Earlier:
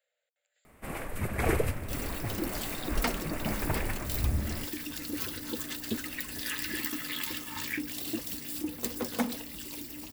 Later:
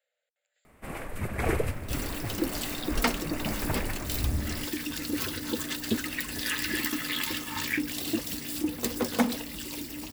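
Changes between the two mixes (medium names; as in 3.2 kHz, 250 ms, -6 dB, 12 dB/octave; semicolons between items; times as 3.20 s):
second sound +5.5 dB; master: add treble shelf 11 kHz -6 dB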